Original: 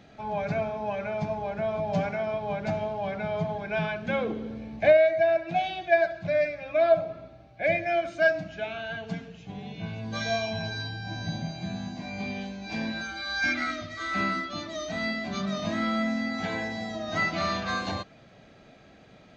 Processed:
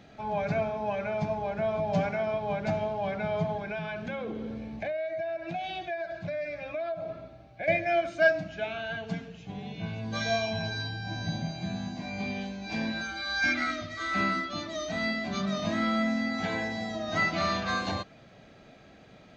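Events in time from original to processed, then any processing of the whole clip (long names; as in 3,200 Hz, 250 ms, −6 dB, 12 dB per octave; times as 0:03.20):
0:03.58–0:07.68: downward compressor, threshold −31 dBFS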